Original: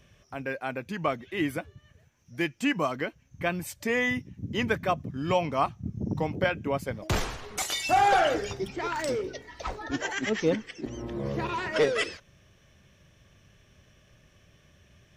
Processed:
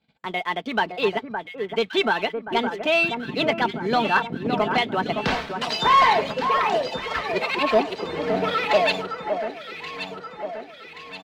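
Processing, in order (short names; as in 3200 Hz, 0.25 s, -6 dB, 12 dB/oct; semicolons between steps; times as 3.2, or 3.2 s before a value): LPF 3300 Hz 24 dB/oct; gate -57 dBFS, range -16 dB; HPF 160 Hz 6 dB/oct; comb 6.1 ms, depth 42%; sample leveller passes 1; on a send: echo with dull and thin repeats by turns 0.761 s, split 1200 Hz, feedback 71%, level -6.5 dB; on the sum: speed mistake 33 rpm record played at 45 rpm; gain +2.5 dB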